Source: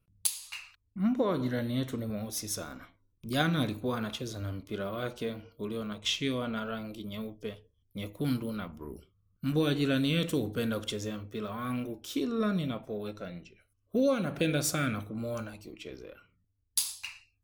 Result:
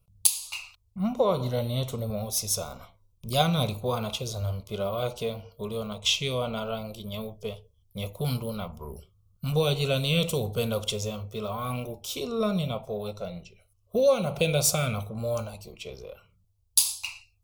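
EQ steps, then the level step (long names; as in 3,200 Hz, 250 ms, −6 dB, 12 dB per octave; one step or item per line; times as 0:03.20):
dynamic equaliser 2,500 Hz, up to +4 dB, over −52 dBFS, Q 3.1
phaser with its sweep stopped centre 710 Hz, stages 4
+8.5 dB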